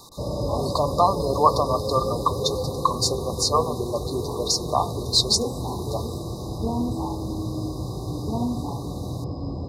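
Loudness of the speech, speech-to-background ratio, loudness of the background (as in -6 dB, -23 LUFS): -24.0 LUFS, 5.0 dB, -29.0 LUFS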